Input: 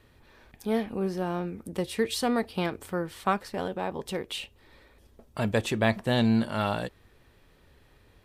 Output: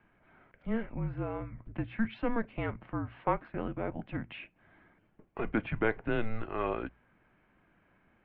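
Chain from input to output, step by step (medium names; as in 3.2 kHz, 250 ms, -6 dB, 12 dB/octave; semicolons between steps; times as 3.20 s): mistuned SSB -230 Hz 230–2700 Hz; hum notches 60/120 Hz; trim -3 dB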